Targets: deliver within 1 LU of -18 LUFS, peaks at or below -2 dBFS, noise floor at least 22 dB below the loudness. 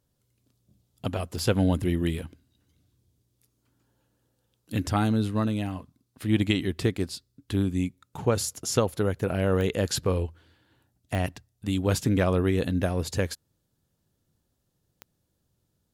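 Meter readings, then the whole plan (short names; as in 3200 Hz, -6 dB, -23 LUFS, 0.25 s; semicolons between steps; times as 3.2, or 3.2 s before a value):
clicks 4; loudness -27.5 LUFS; peak -9.0 dBFS; loudness target -18.0 LUFS
-> de-click; gain +9.5 dB; limiter -2 dBFS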